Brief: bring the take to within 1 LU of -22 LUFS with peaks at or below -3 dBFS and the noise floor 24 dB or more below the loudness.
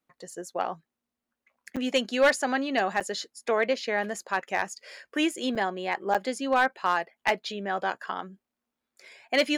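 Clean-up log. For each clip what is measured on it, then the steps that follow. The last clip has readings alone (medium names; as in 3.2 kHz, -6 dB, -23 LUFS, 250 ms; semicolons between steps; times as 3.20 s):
clipped samples 0.2%; clipping level -14.5 dBFS; dropouts 4; longest dropout 6.7 ms; loudness -28.0 LUFS; peak level -14.5 dBFS; loudness target -22.0 LUFS
-> clip repair -14.5 dBFS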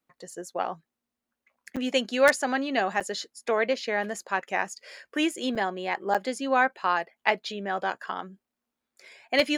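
clipped samples 0.0%; dropouts 4; longest dropout 6.7 ms
-> interpolate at 1.76/3.00/5.55/6.14 s, 6.7 ms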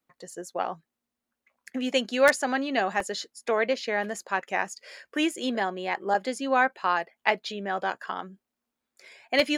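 dropouts 0; loudness -27.5 LUFS; peak level -5.5 dBFS; loudness target -22.0 LUFS
-> trim +5.5 dB; peak limiter -3 dBFS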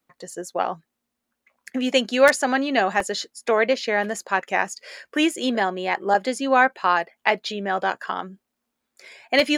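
loudness -22.5 LUFS; peak level -3.0 dBFS; noise floor -81 dBFS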